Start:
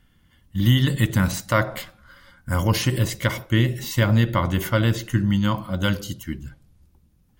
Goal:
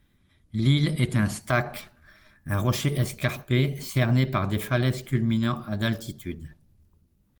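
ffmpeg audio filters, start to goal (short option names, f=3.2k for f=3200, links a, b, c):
-af "asetrate=49501,aresample=44100,atempo=0.890899,volume=-3.5dB" -ar 48000 -c:a libopus -b:a 24k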